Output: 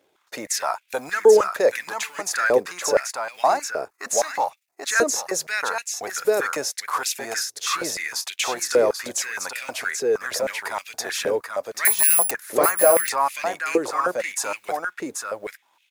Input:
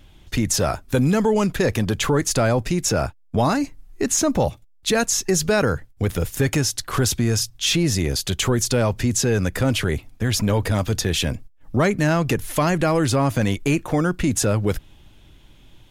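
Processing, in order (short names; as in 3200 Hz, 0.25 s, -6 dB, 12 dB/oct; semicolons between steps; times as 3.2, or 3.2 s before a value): G.711 law mismatch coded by A; 11.85–12.31 careless resampling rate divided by 4×, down none, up zero stuff; bell 3100 Hz -8.5 dB 0.5 oct; on a send: echo 0.785 s -5 dB; on the sum: stepped high-pass 6.4 Hz 440–2500 Hz; gain -3 dB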